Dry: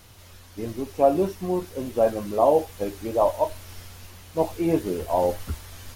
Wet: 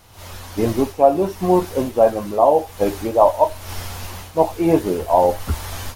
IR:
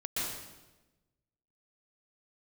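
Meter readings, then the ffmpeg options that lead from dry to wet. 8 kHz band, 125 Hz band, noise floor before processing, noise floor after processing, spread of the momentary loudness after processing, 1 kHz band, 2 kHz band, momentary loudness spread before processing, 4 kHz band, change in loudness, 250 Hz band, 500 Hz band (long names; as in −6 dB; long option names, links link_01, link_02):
+7.5 dB, +7.0 dB, −48 dBFS, −39 dBFS, 15 LU, +8.5 dB, +8.0 dB, 20 LU, +8.0 dB, +6.5 dB, +6.5 dB, +6.0 dB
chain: -af "equalizer=frequency=850:width=1.3:gain=6.5,dynaudnorm=framelen=120:gausssize=3:maxgain=13dB,volume=-1dB"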